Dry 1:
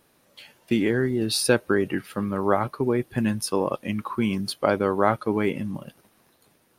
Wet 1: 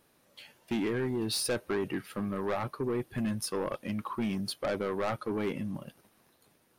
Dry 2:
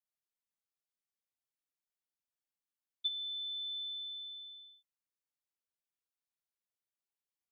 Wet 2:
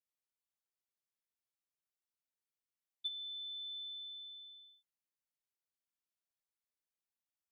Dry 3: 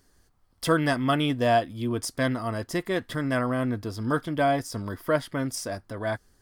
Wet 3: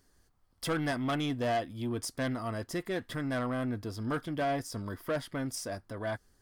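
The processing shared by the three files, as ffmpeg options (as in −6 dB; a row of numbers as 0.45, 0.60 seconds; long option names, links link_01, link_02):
-af "asoftclip=type=tanh:threshold=-21dB,volume=-4.5dB"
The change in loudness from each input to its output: −8.5, −5.0, −7.0 LU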